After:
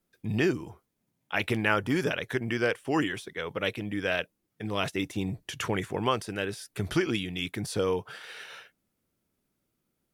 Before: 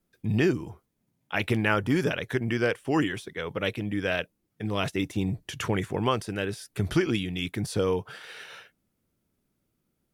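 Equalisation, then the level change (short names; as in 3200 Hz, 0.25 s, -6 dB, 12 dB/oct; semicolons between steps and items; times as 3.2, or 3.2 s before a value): low shelf 280 Hz -5.5 dB; 0.0 dB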